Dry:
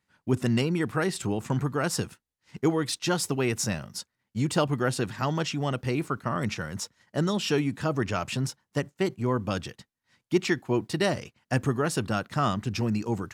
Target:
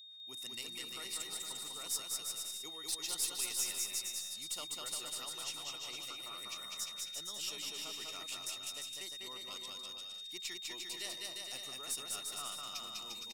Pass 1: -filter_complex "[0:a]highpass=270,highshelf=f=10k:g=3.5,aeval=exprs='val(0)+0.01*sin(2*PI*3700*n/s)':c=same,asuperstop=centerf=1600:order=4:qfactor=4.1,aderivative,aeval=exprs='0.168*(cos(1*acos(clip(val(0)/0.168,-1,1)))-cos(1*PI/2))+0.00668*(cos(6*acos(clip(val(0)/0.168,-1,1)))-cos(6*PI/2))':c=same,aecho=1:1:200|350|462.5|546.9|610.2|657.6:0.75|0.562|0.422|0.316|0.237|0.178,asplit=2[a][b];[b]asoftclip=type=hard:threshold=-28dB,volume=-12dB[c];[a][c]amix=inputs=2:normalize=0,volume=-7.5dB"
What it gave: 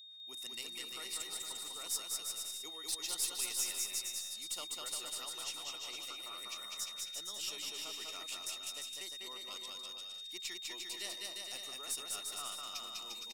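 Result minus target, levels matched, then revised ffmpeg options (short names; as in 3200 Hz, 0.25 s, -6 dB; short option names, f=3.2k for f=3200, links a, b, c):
125 Hz band -5.5 dB
-filter_complex "[0:a]highpass=120,highshelf=f=10k:g=3.5,aeval=exprs='val(0)+0.01*sin(2*PI*3700*n/s)':c=same,asuperstop=centerf=1600:order=4:qfactor=4.1,aderivative,aeval=exprs='0.168*(cos(1*acos(clip(val(0)/0.168,-1,1)))-cos(1*PI/2))+0.00668*(cos(6*acos(clip(val(0)/0.168,-1,1)))-cos(6*PI/2))':c=same,aecho=1:1:200|350|462.5|546.9|610.2|657.6:0.75|0.562|0.422|0.316|0.237|0.178,asplit=2[a][b];[b]asoftclip=type=hard:threshold=-28dB,volume=-12dB[c];[a][c]amix=inputs=2:normalize=0,volume=-7.5dB"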